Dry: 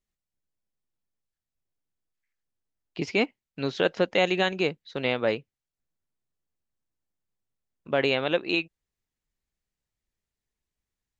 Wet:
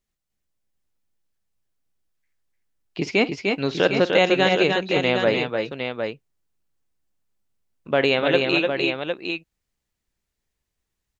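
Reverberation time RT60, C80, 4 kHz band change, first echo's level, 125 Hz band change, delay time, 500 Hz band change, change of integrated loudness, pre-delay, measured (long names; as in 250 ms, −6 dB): no reverb audible, no reverb audible, +6.5 dB, −17.5 dB, +6.5 dB, 48 ms, +6.5 dB, +5.5 dB, no reverb audible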